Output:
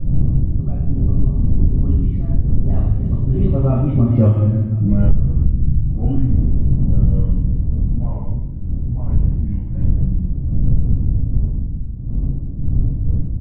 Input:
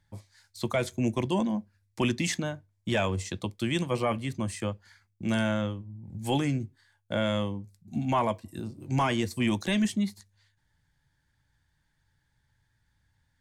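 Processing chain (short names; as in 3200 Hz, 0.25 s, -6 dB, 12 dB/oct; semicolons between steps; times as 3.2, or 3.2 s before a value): spectral delay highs late, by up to 0.178 s; Doppler pass-by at 4.29, 34 m/s, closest 5.4 m; wind noise 140 Hz -43 dBFS; Bessel low-pass 610 Hz, order 2; low shelf 200 Hz +10 dB; echo 1.049 s -23.5 dB; reverb RT60 1.0 s, pre-delay 3 ms, DRR -9.5 dB; compressor 12:1, threshold -16 dBFS, peak gain reduction 21.5 dB; gain +8 dB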